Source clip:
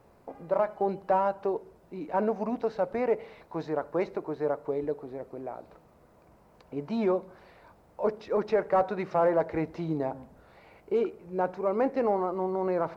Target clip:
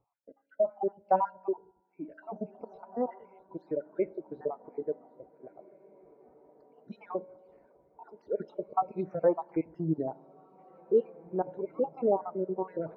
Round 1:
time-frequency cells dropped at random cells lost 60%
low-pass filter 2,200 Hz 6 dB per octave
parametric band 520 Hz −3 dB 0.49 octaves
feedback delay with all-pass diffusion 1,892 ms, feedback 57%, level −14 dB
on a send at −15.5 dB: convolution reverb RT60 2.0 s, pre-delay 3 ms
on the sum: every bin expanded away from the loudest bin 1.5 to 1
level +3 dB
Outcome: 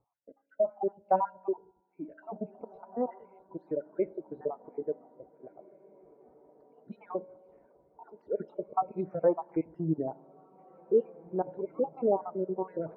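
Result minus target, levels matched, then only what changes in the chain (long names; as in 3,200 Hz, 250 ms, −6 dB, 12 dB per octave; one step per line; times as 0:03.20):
2,000 Hz band −2.5 dB
remove: low-pass filter 2,200 Hz 6 dB per octave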